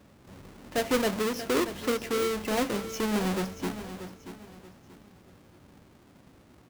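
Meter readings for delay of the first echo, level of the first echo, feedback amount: 0.633 s, -12.0 dB, 32%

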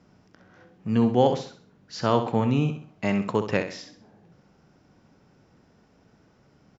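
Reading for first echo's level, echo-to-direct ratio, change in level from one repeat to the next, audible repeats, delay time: -9.0 dB, -8.5 dB, -9.0 dB, 3, 65 ms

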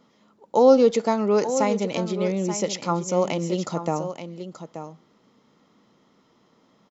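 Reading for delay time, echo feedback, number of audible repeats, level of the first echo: 0.88 s, no steady repeat, 1, -10.5 dB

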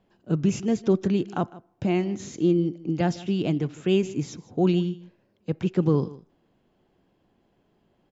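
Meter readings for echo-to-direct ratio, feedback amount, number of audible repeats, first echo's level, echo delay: -19.0 dB, no steady repeat, 1, -19.0 dB, 0.156 s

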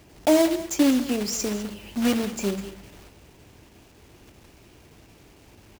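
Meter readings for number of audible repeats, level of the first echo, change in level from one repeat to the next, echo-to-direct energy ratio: 1, -15.5 dB, no steady repeat, -15.5 dB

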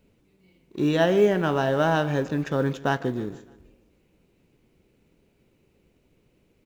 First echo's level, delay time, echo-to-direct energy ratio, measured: -20.0 dB, 0.152 s, -18.5 dB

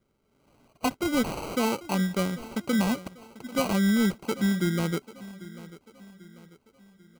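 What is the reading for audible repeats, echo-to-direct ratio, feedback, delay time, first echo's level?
3, -17.0 dB, 45%, 0.792 s, -18.0 dB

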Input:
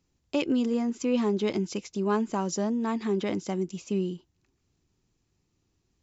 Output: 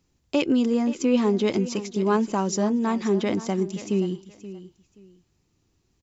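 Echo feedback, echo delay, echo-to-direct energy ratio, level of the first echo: 23%, 0.527 s, -15.0 dB, -15.0 dB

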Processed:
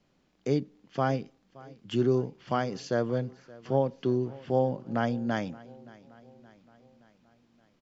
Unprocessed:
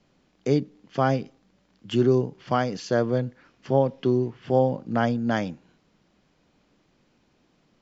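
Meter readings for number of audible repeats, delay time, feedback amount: 3, 0.572 s, 55%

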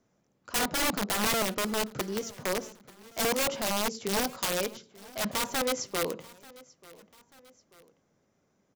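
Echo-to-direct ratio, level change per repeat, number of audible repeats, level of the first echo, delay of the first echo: -21.0 dB, -6.0 dB, 2, -22.0 dB, 0.888 s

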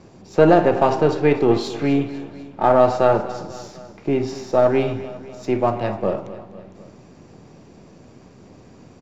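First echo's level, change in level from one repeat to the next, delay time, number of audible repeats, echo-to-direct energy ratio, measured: -15.5 dB, -5.0 dB, 0.249 s, 3, -14.0 dB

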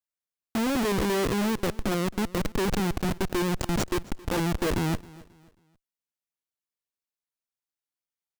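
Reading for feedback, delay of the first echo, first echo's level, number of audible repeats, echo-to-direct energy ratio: 34%, 0.269 s, -21.0 dB, 2, -20.5 dB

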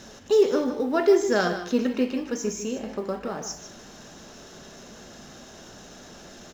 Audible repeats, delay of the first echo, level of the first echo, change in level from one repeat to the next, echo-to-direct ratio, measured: 1, 0.153 s, -11.0 dB, no steady repeat, -11.0 dB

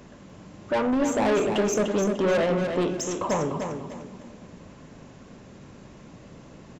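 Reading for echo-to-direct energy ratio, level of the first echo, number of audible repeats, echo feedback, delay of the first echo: -6.0 dB, -6.5 dB, 3, 31%, 0.298 s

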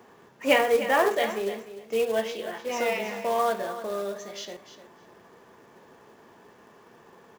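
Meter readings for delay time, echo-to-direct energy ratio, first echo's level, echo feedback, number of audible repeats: 0.301 s, -12.5 dB, -12.5 dB, 15%, 2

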